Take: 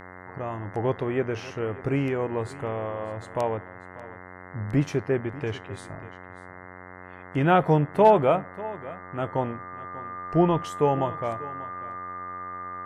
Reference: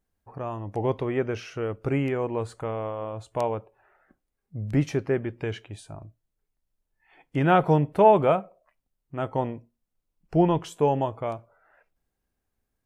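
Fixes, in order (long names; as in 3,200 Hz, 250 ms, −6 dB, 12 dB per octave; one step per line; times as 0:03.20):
clipped peaks rebuilt −7.5 dBFS
hum removal 91.1 Hz, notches 23
notch filter 1,200 Hz, Q 30
echo removal 591 ms −18 dB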